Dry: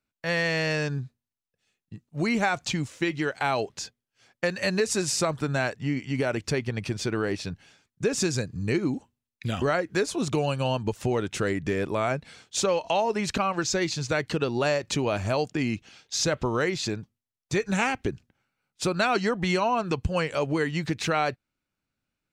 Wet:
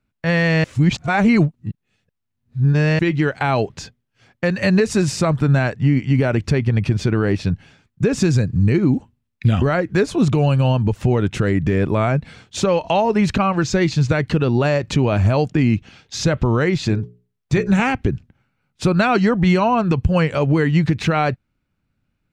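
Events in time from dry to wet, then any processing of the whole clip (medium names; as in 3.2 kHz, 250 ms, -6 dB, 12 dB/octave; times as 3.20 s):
0.64–2.99 s: reverse
16.77–17.80 s: hum notches 60/120/180/240/300/360/420/480/540/600 Hz
whole clip: tone controls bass +10 dB, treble -9 dB; peak limiter -14 dBFS; trim +7 dB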